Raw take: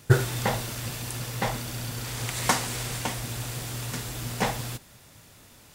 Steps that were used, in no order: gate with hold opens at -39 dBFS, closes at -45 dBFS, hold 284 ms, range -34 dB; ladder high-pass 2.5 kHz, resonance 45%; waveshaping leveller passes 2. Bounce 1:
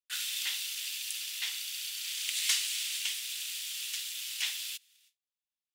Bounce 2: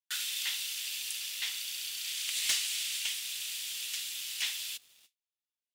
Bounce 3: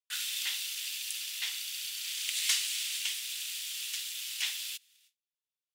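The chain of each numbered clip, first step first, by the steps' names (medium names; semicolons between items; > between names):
gate with hold > waveshaping leveller > ladder high-pass; ladder high-pass > gate with hold > waveshaping leveller; waveshaping leveller > ladder high-pass > gate with hold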